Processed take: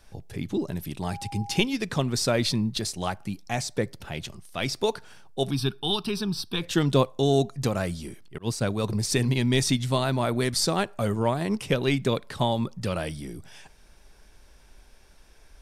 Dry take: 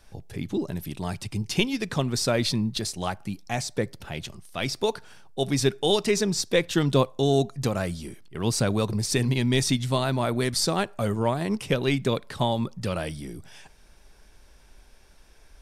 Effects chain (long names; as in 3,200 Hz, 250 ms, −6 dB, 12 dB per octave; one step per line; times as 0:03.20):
0:01.01–0:01.61: steady tone 810 Hz −38 dBFS
0:05.51–0:06.62: phaser with its sweep stopped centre 2,000 Hz, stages 6
0:08.38–0:08.84: downward expander −19 dBFS